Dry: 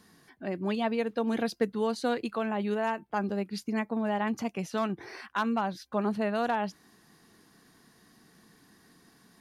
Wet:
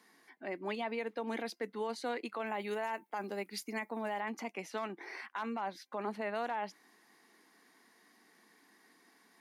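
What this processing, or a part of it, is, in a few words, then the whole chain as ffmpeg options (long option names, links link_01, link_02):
laptop speaker: -filter_complex "[0:a]asettb=1/sr,asplit=3[link_01][link_02][link_03];[link_01]atrim=end=2.464[link_04];[link_02]atrim=start=2.46:end=4.21,asetpts=PTS-STARTPTS,afade=type=in:duration=0.004:curve=qsin,afade=type=out:start_time=1.746:duration=0.004:curve=qsin,aemphasis=mode=production:type=50kf[link_05];[link_03]atrim=start=4.206[link_06];[link_04][link_05]acrossfade=duration=0.004:curve1=hsin:curve2=qsin[link_07];[link_07][link_06]acrossfade=duration=0.004:curve1=qsin:curve2=hsin,highpass=frequency=250:width=0.5412,highpass=frequency=250:width=1.3066,equalizer=frequency=890:width_type=o:width=0.55:gain=5,equalizer=frequency=2100:width_type=o:width=0.37:gain=10,alimiter=limit=-22dB:level=0:latency=1:release=22,volume=-6dB"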